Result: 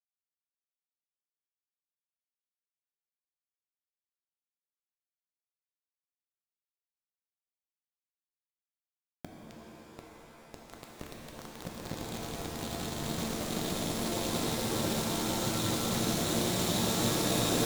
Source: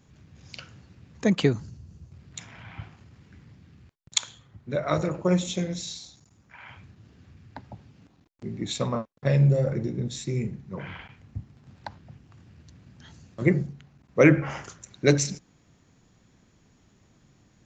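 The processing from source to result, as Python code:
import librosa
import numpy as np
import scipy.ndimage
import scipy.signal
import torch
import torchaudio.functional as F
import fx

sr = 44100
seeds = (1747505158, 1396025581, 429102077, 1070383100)

y = fx.paulstretch(x, sr, seeds[0], factor=27.0, window_s=1.0, from_s=7.92)
y = np.where(np.abs(y) >= 10.0 ** (-31.0 / 20.0), y, 0.0)
y = fx.rev_shimmer(y, sr, seeds[1], rt60_s=3.6, semitones=7, shimmer_db=-2, drr_db=-1.5)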